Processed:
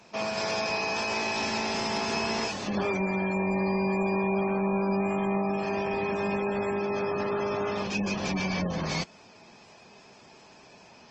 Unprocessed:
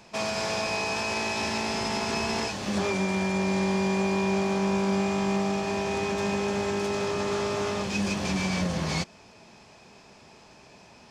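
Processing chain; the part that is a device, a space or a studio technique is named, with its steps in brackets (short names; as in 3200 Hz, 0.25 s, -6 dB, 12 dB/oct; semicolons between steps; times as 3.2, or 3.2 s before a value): noise-suppressed video call (HPF 140 Hz 6 dB/oct; spectral gate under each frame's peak -25 dB strong; Opus 20 kbps 48000 Hz)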